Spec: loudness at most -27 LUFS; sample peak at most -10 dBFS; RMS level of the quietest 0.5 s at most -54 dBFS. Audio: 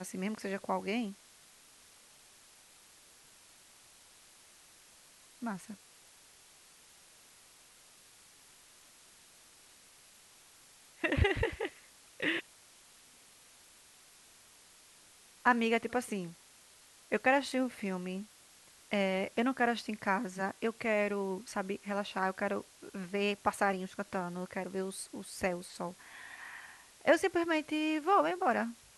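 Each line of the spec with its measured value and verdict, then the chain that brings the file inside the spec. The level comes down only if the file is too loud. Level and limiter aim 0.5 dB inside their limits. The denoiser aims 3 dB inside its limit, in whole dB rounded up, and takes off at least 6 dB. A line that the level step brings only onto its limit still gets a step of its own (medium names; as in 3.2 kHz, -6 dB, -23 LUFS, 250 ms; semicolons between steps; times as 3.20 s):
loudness -34.0 LUFS: pass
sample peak -13.0 dBFS: pass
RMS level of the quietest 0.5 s -60 dBFS: pass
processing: none needed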